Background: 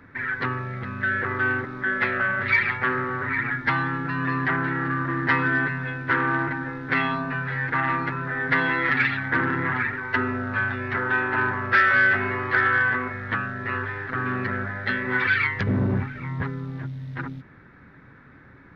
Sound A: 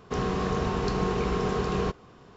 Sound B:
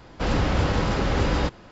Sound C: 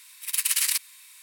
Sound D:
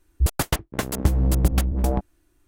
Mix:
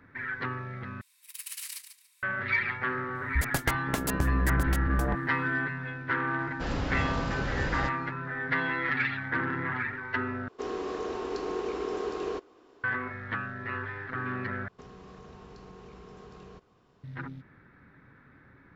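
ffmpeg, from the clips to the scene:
-filter_complex "[1:a]asplit=2[s0][s1];[0:a]volume=0.447[s2];[3:a]aecho=1:1:143|286|429:0.335|0.077|0.0177[s3];[4:a]acompressor=threshold=0.1:ratio=6:attack=3.2:release=140:knee=1:detection=peak[s4];[s0]lowshelf=f=230:t=q:w=3:g=-11[s5];[s1]acompressor=threshold=0.0126:ratio=4:attack=24:release=75:knee=1:detection=peak[s6];[s2]asplit=4[s7][s8][s9][s10];[s7]atrim=end=1.014[s11];[s3]atrim=end=1.22,asetpts=PTS-STARTPTS,volume=0.158[s12];[s8]atrim=start=2.226:end=10.484[s13];[s5]atrim=end=2.36,asetpts=PTS-STARTPTS,volume=0.422[s14];[s9]atrim=start=12.836:end=14.684[s15];[s6]atrim=end=2.36,asetpts=PTS-STARTPTS,volume=0.237[s16];[s10]atrim=start=17.036[s17];[s4]atrim=end=2.47,asetpts=PTS-STARTPTS,volume=0.75,afade=t=in:d=0.004:c=hsin,afade=t=out:st=2.466:d=0.004:c=hsin,adelay=3150[s18];[2:a]atrim=end=1.71,asetpts=PTS-STARTPTS,volume=0.355,afade=t=in:d=0.004:c=hsin,afade=t=out:st=1.706:d=0.004:c=hsin,adelay=6400[s19];[s11][s12]acrossfade=d=0.004:c1=hsin:c2=hsin[s20];[s20][s13]acrossfade=d=0.004:c1=hsin:c2=hsin[s21];[s21][s14]acrossfade=d=0.004:c1=hsin:c2=hsin[s22];[s22][s15]acrossfade=d=0.004:c1=hsin:c2=hsin[s23];[s23][s16]acrossfade=d=0.004:c1=hsin:c2=hsin[s24];[s24][s17]acrossfade=d=0.004:c1=hsin:c2=hsin[s25];[s25][s18][s19]amix=inputs=3:normalize=0"

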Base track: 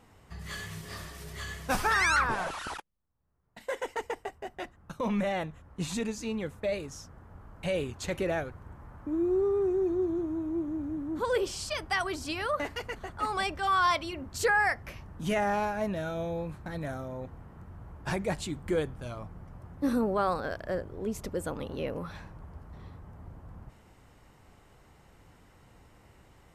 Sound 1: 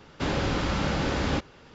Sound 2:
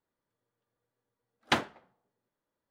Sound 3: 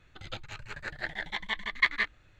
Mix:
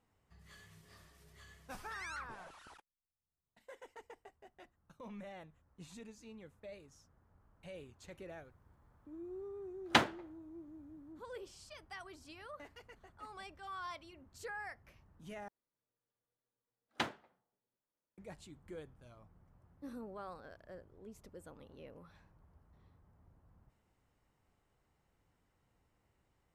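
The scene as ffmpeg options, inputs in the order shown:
-filter_complex "[2:a]asplit=2[s0][s1];[0:a]volume=0.106,asplit=2[s2][s3];[s2]atrim=end=15.484[s4];[s1]atrim=end=2.7,asetpts=PTS-STARTPTS,volume=0.316[s5];[s3]atrim=start=18.176[s6];[s0]atrim=end=2.7,asetpts=PTS-STARTPTS,volume=0.944,afade=t=in:d=0.004:c=hsin,afade=t=out:st=2.696:d=0.004:c=hsin,adelay=8430[s7];[s4][s5]acrossfade=d=0.004:c1=hsin:c2=hsin[s8];[s8][s6]acrossfade=d=0.004:c1=hsin:c2=hsin[s9];[s9][s7]amix=inputs=2:normalize=0"

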